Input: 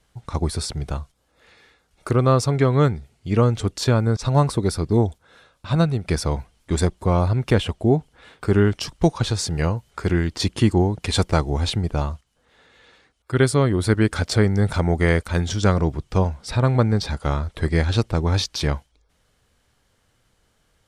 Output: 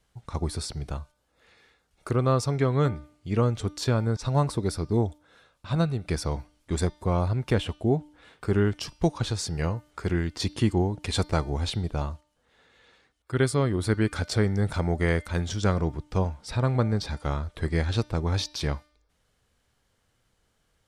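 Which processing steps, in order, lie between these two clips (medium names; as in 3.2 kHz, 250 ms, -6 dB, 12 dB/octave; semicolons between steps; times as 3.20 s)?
de-hum 299.1 Hz, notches 20; trim -6 dB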